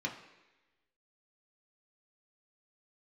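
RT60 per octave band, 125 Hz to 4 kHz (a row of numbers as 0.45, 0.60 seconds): 0.85, 1.0, 1.1, 1.0, 1.2, 1.1 seconds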